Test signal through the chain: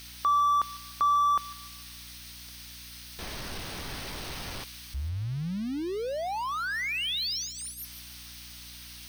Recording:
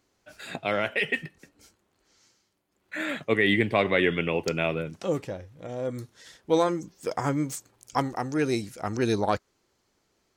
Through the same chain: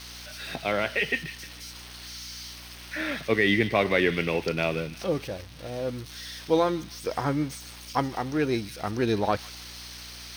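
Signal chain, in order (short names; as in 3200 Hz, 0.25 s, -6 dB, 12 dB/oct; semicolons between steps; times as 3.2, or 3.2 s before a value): switching spikes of -25.5 dBFS; polynomial smoothing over 15 samples; on a send: thin delay 0.15 s, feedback 39%, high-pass 2400 Hz, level -10 dB; on the sum: hum 60 Hz, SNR 20 dB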